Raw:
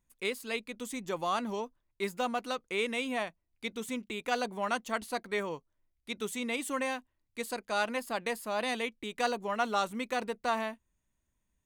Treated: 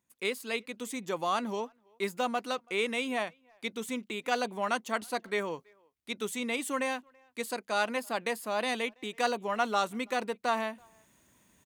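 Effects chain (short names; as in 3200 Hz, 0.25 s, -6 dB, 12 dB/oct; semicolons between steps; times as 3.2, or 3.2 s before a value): HPF 150 Hz 12 dB/oct; reverse; upward compressor, threshold -50 dBFS; reverse; speakerphone echo 0.33 s, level -29 dB; gain +1.5 dB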